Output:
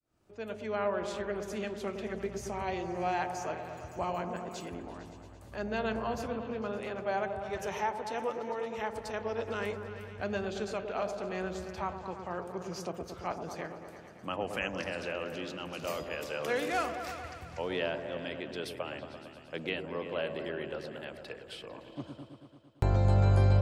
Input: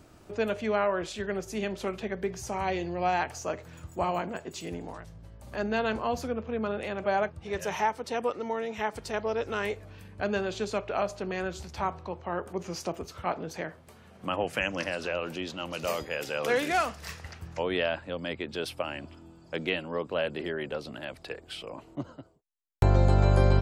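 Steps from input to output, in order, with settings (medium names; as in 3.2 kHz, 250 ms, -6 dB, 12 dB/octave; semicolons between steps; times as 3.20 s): fade-in on the opening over 0.88 s; delay with an opening low-pass 113 ms, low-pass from 750 Hz, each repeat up 1 oct, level -6 dB; trim -5.5 dB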